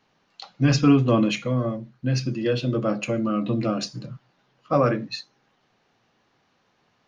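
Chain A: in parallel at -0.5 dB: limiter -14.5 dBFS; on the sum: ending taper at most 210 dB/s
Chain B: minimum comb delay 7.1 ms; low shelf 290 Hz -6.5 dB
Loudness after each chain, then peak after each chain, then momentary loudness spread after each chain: -19.0, -27.5 LUFS; -4.0, -10.0 dBFS; 10, 15 LU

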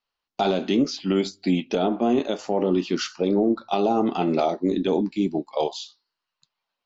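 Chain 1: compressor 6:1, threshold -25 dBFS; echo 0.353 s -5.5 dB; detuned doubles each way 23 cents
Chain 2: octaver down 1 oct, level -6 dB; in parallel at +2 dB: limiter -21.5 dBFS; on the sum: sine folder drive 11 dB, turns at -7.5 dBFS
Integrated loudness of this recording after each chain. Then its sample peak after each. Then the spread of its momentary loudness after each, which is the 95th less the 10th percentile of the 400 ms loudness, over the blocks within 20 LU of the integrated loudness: -33.0, -12.5 LUFS; -18.0, -7.5 dBFS; 4, 3 LU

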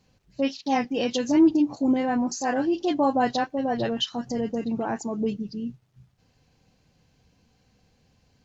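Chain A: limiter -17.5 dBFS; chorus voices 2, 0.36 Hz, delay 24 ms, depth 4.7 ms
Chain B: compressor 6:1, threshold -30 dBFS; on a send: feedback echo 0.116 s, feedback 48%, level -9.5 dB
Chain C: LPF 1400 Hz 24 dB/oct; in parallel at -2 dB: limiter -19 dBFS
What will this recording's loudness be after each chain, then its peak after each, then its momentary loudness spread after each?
-30.5, -33.0, -21.5 LUFS; -17.0, -20.0, -8.0 dBFS; 8, 5, 10 LU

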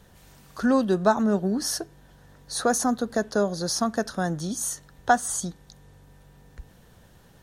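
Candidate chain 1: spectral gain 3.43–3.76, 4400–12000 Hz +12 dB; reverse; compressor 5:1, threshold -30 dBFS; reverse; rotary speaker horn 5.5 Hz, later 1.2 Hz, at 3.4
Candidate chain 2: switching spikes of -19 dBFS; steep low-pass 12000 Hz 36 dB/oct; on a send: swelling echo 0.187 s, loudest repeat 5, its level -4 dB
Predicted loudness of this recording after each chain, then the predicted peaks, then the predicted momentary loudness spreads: -36.0, -17.5 LUFS; -21.0, -3.0 dBFS; 21, 4 LU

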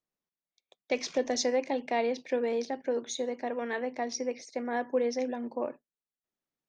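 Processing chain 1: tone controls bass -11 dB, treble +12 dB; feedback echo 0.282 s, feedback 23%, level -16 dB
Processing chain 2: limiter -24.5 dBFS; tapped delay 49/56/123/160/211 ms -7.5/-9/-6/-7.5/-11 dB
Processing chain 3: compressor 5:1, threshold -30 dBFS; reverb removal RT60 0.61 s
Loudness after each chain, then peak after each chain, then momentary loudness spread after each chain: -30.5, -32.5, -36.5 LUFS; -9.0, -19.0, -20.0 dBFS; 10, 6, 4 LU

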